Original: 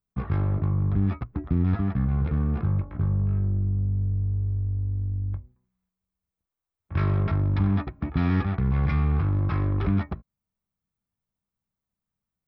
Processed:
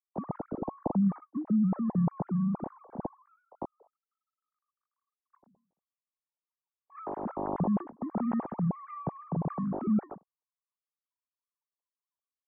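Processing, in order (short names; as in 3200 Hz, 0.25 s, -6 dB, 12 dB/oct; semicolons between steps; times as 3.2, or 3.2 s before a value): sine-wave speech; ladder low-pass 1100 Hz, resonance 40%; dynamic EQ 540 Hz, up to -4 dB, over -44 dBFS, Q 1.2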